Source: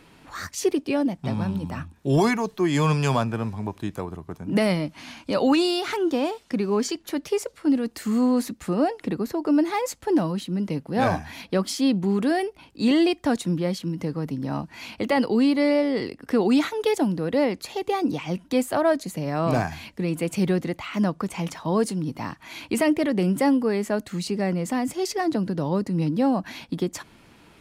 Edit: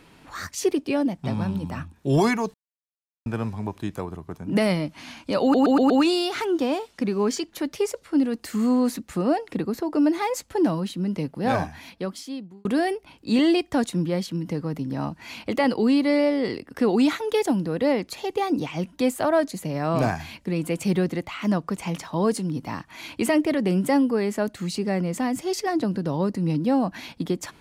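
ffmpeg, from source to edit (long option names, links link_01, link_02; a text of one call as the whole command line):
ffmpeg -i in.wav -filter_complex "[0:a]asplit=8[link_01][link_02][link_03][link_04][link_05][link_06][link_07][link_08];[link_01]atrim=end=2.54,asetpts=PTS-STARTPTS,afade=type=out:start_time=2.536:duration=0.004:curve=hsin[link_09];[link_02]atrim=start=2.54:end=3.26,asetpts=PTS-STARTPTS,volume=0[link_10];[link_03]atrim=start=3.26:end=5.542,asetpts=PTS-STARTPTS,afade=type=in:duration=0.004:curve=hsin[link_11];[link_04]atrim=start=5.418:end=5.542[link_12];[link_05]atrim=start=5.418:end=5.542[link_13];[link_06]atrim=start=5.418:end=5.542[link_14];[link_07]atrim=start=5.418:end=12.17,asetpts=PTS-STARTPTS,afade=type=out:start_time=5.452:duration=1.3[link_15];[link_08]atrim=start=12.17,asetpts=PTS-STARTPTS,afade=type=in:duration=0.004:curve=hsin[link_16];[link_09][link_10][link_11]concat=n=3:v=0:a=1[link_17];[link_17][link_12]acrossfade=duration=0.004:curve1=hsin:curve2=hsin[link_18];[link_18][link_13]acrossfade=duration=0.004:curve1=hsin:curve2=hsin[link_19];[link_19][link_14]acrossfade=duration=0.004:curve1=hsin:curve2=hsin[link_20];[link_15][link_16]concat=n=2:v=0:a=1[link_21];[link_20][link_21]acrossfade=duration=0.004:curve1=hsin:curve2=hsin" out.wav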